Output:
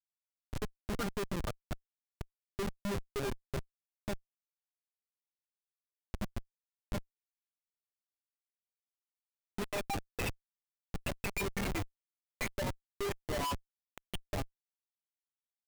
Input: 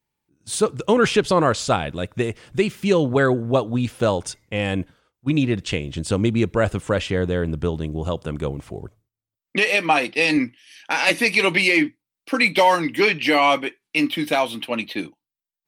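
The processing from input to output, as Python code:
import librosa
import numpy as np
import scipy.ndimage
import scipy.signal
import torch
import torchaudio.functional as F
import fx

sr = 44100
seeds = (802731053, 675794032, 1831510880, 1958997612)

y = fx.bin_expand(x, sr, power=2.0)
y = fx.lowpass(y, sr, hz=1800.0, slope=6, at=(13.5, 14.03))
y = fx.comb_fb(y, sr, f0_hz=200.0, decay_s=0.17, harmonics='all', damping=0.0, mix_pct=100)
y = fx.schmitt(y, sr, flips_db=-30.5)
y = y * 10.0 ** (2.5 / 20.0)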